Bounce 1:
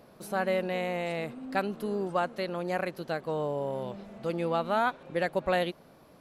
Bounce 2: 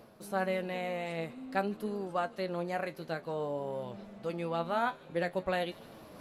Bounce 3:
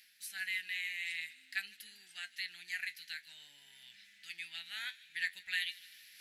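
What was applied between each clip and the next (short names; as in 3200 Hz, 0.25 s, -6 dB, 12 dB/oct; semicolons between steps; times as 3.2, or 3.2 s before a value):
reverse; upward compressor, threshold -37 dBFS; reverse; flange 0.51 Hz, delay 8.7 ms, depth 4.4 ms, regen +58%; thin delay 0.152 s, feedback 55%, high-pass 3300 Hz, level -15.5 dB
elliptic high-pass 1800 Hz, stop band 40 dB; gain +6 dB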